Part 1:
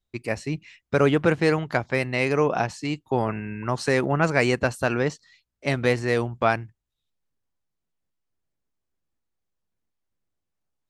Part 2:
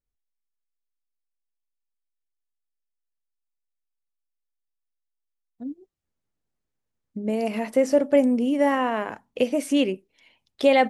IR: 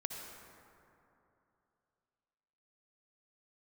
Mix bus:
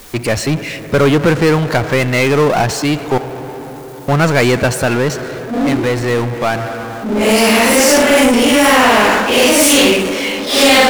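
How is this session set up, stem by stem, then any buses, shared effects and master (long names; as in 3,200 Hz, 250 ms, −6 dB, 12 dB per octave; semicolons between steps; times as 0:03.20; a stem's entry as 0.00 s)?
+1.5 dB, 0.00 s, muted 0:03.18–0:04.08, send −17.5 dB, automatic ducking −9 dB, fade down 0.90 s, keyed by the second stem
+2.5 dB, 0.00 s, send −8.5 dB, random phases in long frames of 200 ms; Butterworth high-pass 200 Hz 72 dB per octave; every bin compressed towards the loudest bin 2 to 1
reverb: on, RT60 2.9 s, pre-delay 53 ms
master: power curve on the samples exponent 0.5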